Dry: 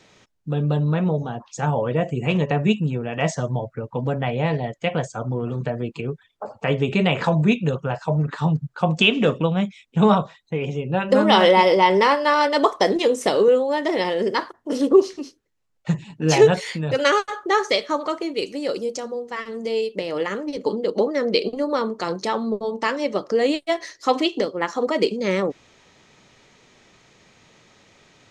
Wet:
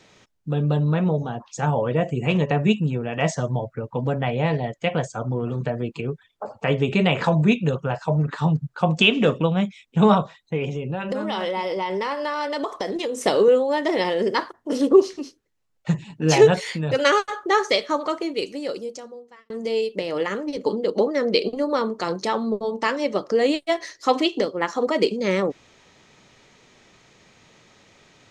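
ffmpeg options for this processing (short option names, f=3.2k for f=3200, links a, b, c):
-filter_complex "[0:a]asettb=1/sr,asplit=3[a][b][c];[a]atrim=end=10.674[d];[b]atrim=start=10.67:end=13.19,asetpts=PTS-STARTPTS,afade=t=in:d=0.004:c=qsin,afade=t=out:st=2.516:d=0.004:c=qsin,acompressor=threshold=-23dB:ratio=6:attack=3.2:release=140:knee=1:detection=peak[e];[c]atrim=start=13.186[f];[d][e]acrossfade=d=0.004:c1=hsin:c2=qsin[g];[g][f]acrossfade=d=0.004:c1=qsin:c2=hsin,asplit=2[h][i];[h]atrim=end=19.5,asetpts=PTS-STARTPTS,afade=t=out:st=18.28:d=1.22[j];[i]atrim=start=19.5,asetpts=PTS-STARTPTS,afade=t=in:d=0.004:c=hsin[k];[j][k]concat=n=2:v=0:a=1"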